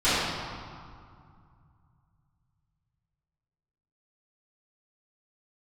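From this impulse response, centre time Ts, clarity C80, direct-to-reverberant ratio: 143 ms, -1.5 dB, -17.5 dB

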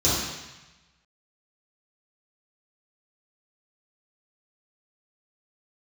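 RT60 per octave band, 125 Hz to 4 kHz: 1.3 s, 1.0 s, 0.95 s, 1.2 s, 1.2 s, 1.1 s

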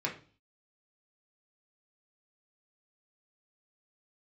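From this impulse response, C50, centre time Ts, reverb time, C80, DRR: 10.0 dB, 18 ms, 0.40 s, 16.0 dB, -2.0 dB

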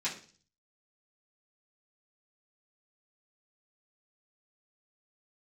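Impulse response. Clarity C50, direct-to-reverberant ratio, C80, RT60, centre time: 9.5 dB, -10.0 dB, 14.5 dB, 0.40 s, 21 ms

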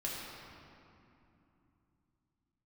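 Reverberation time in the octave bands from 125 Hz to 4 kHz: 4.5 s, 4.0 s, 2.9 s, 2.9 s, 2.3 s, 1.7 s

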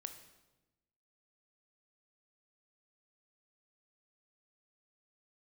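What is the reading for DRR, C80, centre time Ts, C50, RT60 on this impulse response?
7.5 dB, 12.0 dB, 14 ms, 9.5 dB, 1.1 s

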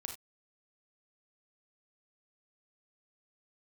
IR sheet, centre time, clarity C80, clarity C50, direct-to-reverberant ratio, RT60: 18 ms, 14.5 dB, 7.0 dB, 3.0 dB, no single decay rate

